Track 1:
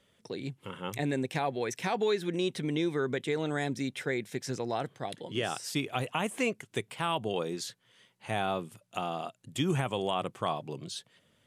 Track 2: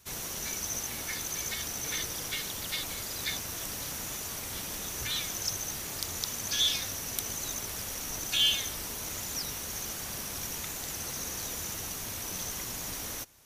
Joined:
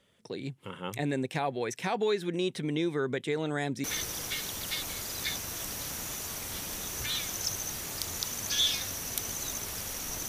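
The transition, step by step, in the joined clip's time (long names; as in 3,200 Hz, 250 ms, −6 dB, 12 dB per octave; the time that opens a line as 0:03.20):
track 1
0:03.84: continue with track 2 from 0:01.85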